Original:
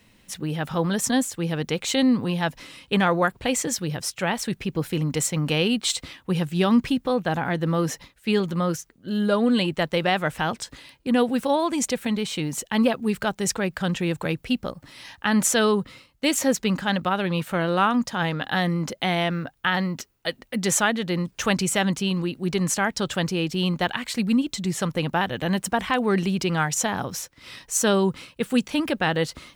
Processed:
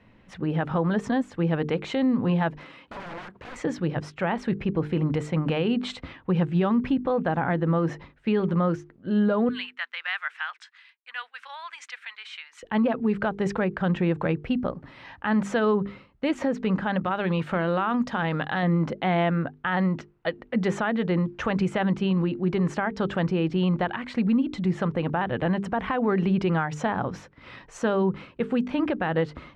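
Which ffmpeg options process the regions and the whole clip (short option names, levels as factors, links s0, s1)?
-filter_complex "[0:a]asettb=1/sr,asplit=3[s0][s1][s2];[s0]atrim=end=2.584[s3];[s1]atrim=start=2.58:end=3.56,asetpts=PTS-STARTPTS,afade=t=in:d=0.004:c=qsin,afade=t=out:st=0.976:d=0.004:c=qsin,highpass=f=270:p=1,acompressor=threshold=0.0316:ratio=4:attack=3.2:release=140:knee=1:detection=peak,aeval=exprs='(mod(47.3*val(0)+1,2)-1)/47.3':c=same[s4];[s2]atrim=start=3.556[s5];[s3][s4]acrossfade=d=0.004:c1=hsin:c2=qsin[s6];[s6][s5]acrossfade=d=0.004:c1=qsin:c2=hsin,asettb=1/sr,asplit=3[s7][s8][s9];[s7]atrim=end=9.494[s10];[s8]atrim=start=9.49:end=12.63,asetpts=PTS-STARTPTS,afade=t=in:d=0.004:c=qsin,afade=t=out:st=3.136:d=0.004:c=qsin,highpass=f=1500:w=0.5412,highpass=f=1500:w=1.3066,agate=range=0.0224:threshold=0.00562:ratio=3:release=100:detection=peak[s11];[s9]atrim=start=12.626[s12];[s10][s11]acrossfade=d=0.004:c1=hsin:c2=qsin[s13];[s13][s12]acrossfade=d=0.004:c1=qsin:c2=hsin,asettb=1/sr,asplit=3[s14][s15][s16];[s14]atrim=end=17.054[s17];[s15]atrim=start=17.05:end=18.63,asetpts=PTS-STARTPTS,afade=t=in:d=0.004:c=qsin,afade=t=out:st=1.576:d=0.004:c=qsin,highshelf=f=2700:g=9.5,acompressor=threshold=0.0631:ratio=2.5:attack=3.2:release=140:knee=1:detection=peak[s18];[s16]atrim=start=18.626[s19];[s17][s18]acrossfade=d=0.004:c1=hsin:c2=qsin[s20];[s20][s19]acrossfade=d=0.004:c1=qsin:c2=hsin,lowpass=1700,bandreject=f=50:t=h:w=6,bandreject=f=100:t=h:w=6,bandreject=f=150:t=h:w=6,bandreject=f=200:t=h:w=6,bandreject=f=250:t=h:w=6,bandreject=f=300:t=h:w=6,bandreject=f=350:t=h:w=6,bandreject=f=400:t=h:w=6,bandreject=f=450:t=h:w=6,alimiter=limit=0.112:level=0:latency=1:release=124,volume=1.5"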